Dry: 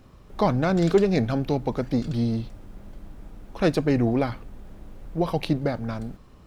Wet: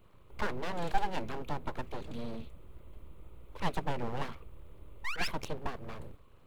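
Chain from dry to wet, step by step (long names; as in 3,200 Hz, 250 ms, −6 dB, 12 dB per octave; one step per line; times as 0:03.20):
sound drawn into the spectrogram rise, 0:05.04–0:05.28, 880–2,800 Hz −24 dBFS
phaser with its sweep stopped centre 1,100 Hz, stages 8
full-wave rectification
level −5.5 dB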